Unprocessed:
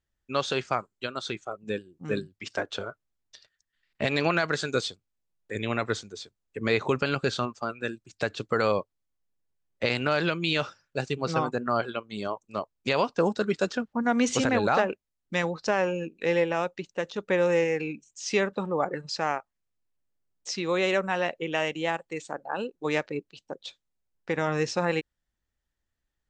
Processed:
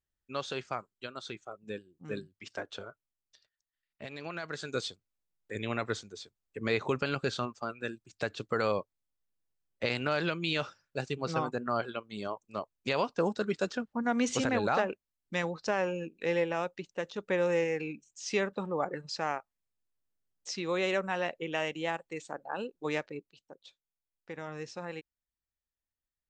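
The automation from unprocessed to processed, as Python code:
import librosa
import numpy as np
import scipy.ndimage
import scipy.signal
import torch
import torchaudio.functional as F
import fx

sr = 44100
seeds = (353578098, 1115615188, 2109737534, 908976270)

y = fx.gain(x, sr, db=fx.line((2.74, -8.5), (4.19, -17.5), (4.87, -5.0), (22.89, -5.0), (23.53, -14.0)))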